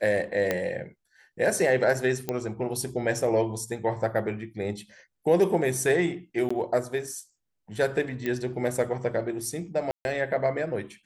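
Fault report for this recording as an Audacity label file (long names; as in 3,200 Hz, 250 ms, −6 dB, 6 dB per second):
0.510000	0.510000	click −11 dBFS
2.290000	2.290000	click −14 dBFS
6.490000	6.500000	drop-out 15 ms
8.260000	8.260000	click −17 dBFS
9.910000	10.050000	drop-out 141 ms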